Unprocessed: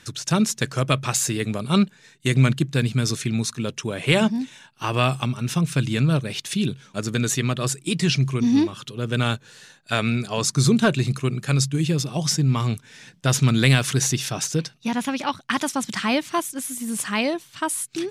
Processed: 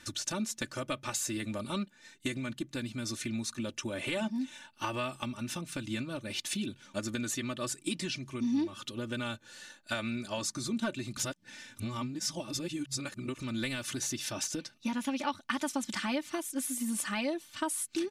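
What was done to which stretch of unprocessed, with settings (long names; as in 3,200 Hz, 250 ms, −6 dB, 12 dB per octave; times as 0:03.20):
0:11.17–0:13.40: reverse
whole clip: downward compressor 4 to 1, threshold −28 dBFS; comb filter 3.4 ms, depth 82%; level −5.5 dB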